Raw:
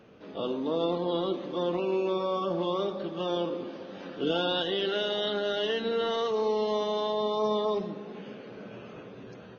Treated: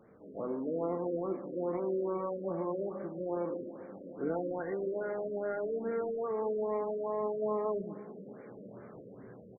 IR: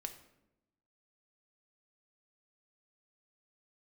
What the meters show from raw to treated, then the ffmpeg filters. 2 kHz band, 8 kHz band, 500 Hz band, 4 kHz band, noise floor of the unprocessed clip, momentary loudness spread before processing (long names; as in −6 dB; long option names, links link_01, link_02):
−11.0 dB, can't be measured, −5.0 dB, below −40 dB, −46 dBFS, 16 LU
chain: -filter_complex "[0:a]asplit=2[link_01][link_02];[link_02]adelay=31,volume=-14dB[link_03];[link_01][link_03]amix=inputs=2:normalize=0,afftfilt=real='re*lt(b*sr/1024,600*pow(2400/600,0.5+0.5*sin(2*PI*2.4*pts/sr)))':imag='im*lt(b*sr/1024,600*pow(2400/600,0.5+0.5*sin(2*PI*2.4*pts/sr)))':win_size=1024:overlap=0.75,volume=-5dB"